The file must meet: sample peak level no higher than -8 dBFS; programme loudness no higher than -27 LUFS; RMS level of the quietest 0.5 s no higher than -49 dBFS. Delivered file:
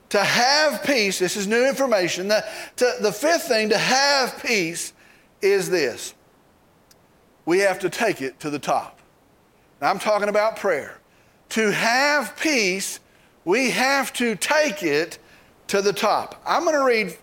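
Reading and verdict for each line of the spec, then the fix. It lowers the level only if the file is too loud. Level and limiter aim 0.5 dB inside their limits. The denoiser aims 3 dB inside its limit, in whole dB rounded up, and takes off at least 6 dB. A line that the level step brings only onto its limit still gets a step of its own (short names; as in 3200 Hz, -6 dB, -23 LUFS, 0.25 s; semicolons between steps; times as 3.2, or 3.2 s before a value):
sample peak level -4.5 dBFS: fail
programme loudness -21.0 LUFS: fail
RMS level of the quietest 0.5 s -57 dBFS: OK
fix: gain -6.5 dB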